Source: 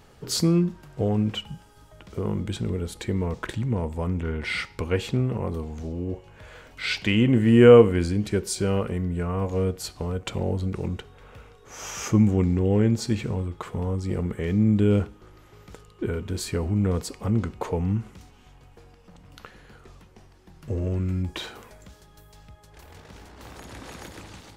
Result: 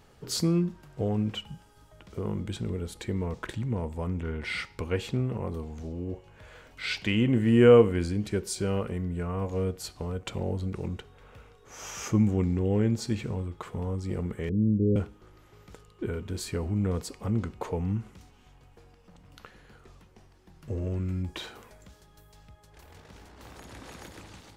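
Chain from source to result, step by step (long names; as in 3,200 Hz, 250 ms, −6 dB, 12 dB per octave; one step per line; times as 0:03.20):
0:14.49–0:14.96: Butterworth low-pass 550 Hz 72 dB per octave
level −4.5 dB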